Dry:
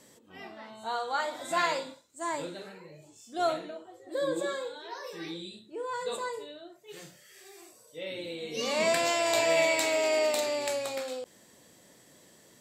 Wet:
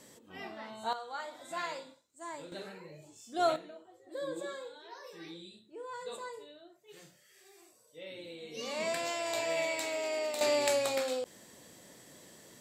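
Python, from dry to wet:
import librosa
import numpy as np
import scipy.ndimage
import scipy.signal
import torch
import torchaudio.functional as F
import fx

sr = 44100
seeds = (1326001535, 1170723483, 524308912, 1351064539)

y = fx.gain(x, sr, db=fx.steps((0.0, 1.0), (0.93, -10.0), (2.52, -0.5), (3.56, -8.0), (10.41, 2.5)))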